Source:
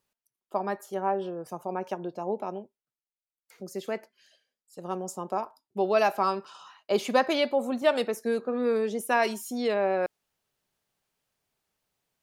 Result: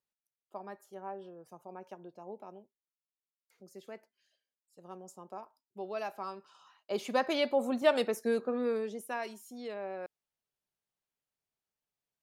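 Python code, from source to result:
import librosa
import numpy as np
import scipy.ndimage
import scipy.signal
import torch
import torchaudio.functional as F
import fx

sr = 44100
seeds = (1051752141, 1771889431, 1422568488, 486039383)

y = fx.gain(x, sr, db=fx.line((6.36, -14.5), (7.61, -2.5), (8.45, -2.5), (9.24, -14.0)))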